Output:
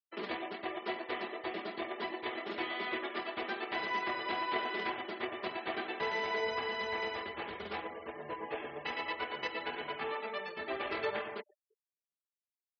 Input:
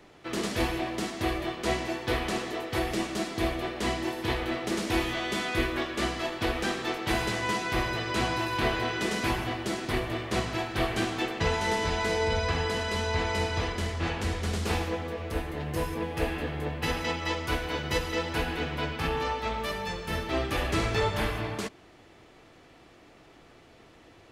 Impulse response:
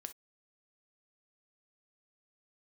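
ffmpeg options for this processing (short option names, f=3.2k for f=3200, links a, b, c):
-filter_complex "[0:a]highpass=f=78:w=0.5412,highpass=f=78:w=1.3066,acrossover=split=300 4400:gain=0.158 1 0.126[a][b][c];[a][b][c]amix=inputs=3:normalize=0,aecho=1:1:5:0.51,asplit=2[d][e];[e]adelay=651,lowpass=f=2.8k:p=1,volume=-22dB,asplit=2[f][g];[g]adelay=651,lowpass=f=2.8k:p=1,volume=0.17[h];[d][f][h]amix=inputs=3:normalize=0,asplit=2[i][j];[1:a]atrim=start_sample=2205,asetrate=52920,aresample=44100[k];[j][k]afir=irnorm=-1:irlink=0,volume=-7.5dB[l];[i][l]amix=inputs=2:normalize=0,aeval=exprs='sgn(val(0))*max(abs(val(0))-0.00224,0)':c=same,afftfilt=real='re*gte(hypot(re,im),0.0112)':imag='im*gte(hypot(re,im),0.0112)':win_size=1024:overlap=0.75,adynamicequalizer=threshold=0.00158:dfrequency=170:dqfactor=3.8:tfrequency=170:tqfactor=3.8:attack=5:release=100:ratio=0.375:range=2.5:mode=cutabove:tftype=bell,atempo=1.9,volume=-7dB"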